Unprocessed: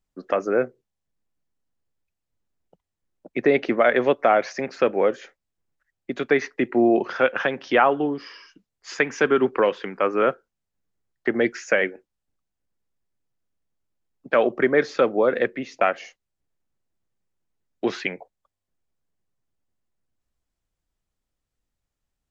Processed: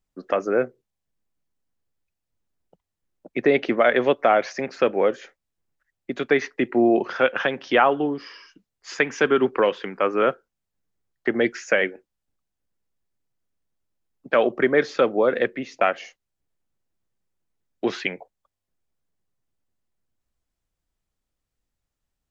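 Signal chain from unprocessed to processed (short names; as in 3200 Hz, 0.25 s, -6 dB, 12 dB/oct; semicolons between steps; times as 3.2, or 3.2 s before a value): dynamic EQ 3200 Hz, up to +4 dB, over -42 dBFS, Q 3.1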